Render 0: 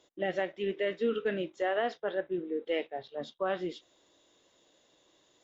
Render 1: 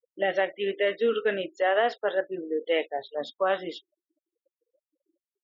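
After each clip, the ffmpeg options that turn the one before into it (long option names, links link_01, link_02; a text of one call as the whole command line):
ffmpeg -i in.wav -af "afftfilt=real='re*gte(hypot(re,im),0.00282)':imag='im*gte(hypot(re,im),0.00282)':win_size=1024:overlap=0.75,bass=frequency=250:gain=-14,treble=frequency=4000:gain=0,bandreject=frequency=360:width=12,volume=7.5dB" out.wav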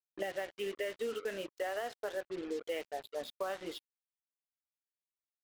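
ffmpeg -i in.wav -af "acompressor=threshold=-31dB:ratio=5,acrusher=bits=6:mix=0:aa=0.5,volume=-4dB" out.wav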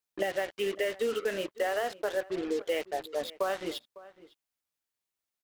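ffmpeg -i in.wav -filter_complex "[0:a]asplit=2[link_01][link_02];[link_02]adelay=553.9,volume=-19dB,highshelf=frequency=4000:gain=-12.5[link_03];[link_01][link_03]amix=inputs=2:normalize=0,volume=7dB" out.wav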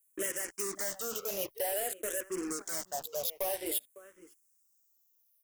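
ffmpeg -i in.wav -filter_complex "[0:a]asoftclip=type=hard:threshold=-30.5dB,aexciter=amount=7.2:drive=7:freq=5800,asplit=2[link_01][link_02];[link_02]afreqshift=-0.52[link_03];[link_01][link_03]amix=inputs=2:normalize=1" out.wav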